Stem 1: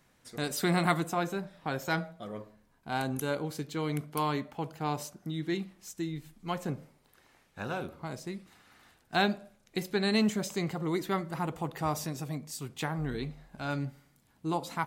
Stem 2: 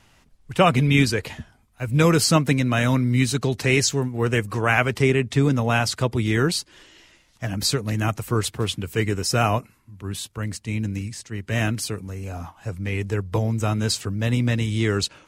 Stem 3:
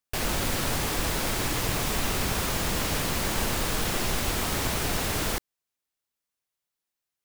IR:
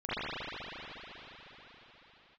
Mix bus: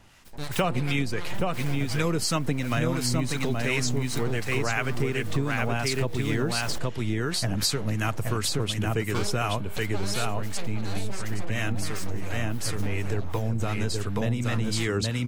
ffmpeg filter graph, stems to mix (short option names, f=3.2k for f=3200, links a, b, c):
-filter_complex "[0:a]aeval=exprs='abs(val(0))':c=same,volume=2dB,asplit=3[a][b][c];[b]volume=-17dB[d];[c]volume=-4.5dB[e];[1:a]volume=3dB,asplit=3[f][g][h];[g]volume=-3.5dB[i];[2:a]asoftclip=type=tanh:threshold=-27dB,adelay=1400,volume=-3dB[j];[h]apad=whole_len=381260[k];[j][k]sidechaincompress=threshold=-21dB:ratio=3:attack=7.1:release=304[l];[3:a]atrim=start_sample=2205[m];[d][m]afir=irnorm=-1:irlink=0[n];[e][i]amix=inputs=2:normalize=0,aecho=0:1:824:1[o];[a][f][l][n][o]amix=inputs=5:normalize=0,acrossover=split=1000[p][q];[p]aeval=exprs='val(0)*(1-0.5/2+0.5/2*cos(2*PI*2.8*n/s))':c=same[r];[q]aeval=exprs='val(0)*(1-0.5/2-0.5/2*cos(2*PI*2.8*n/s))':c=same[s];[r][s]amix=inputs=2:normalize=0,acompressor=threshold=-22dB:ratio=6"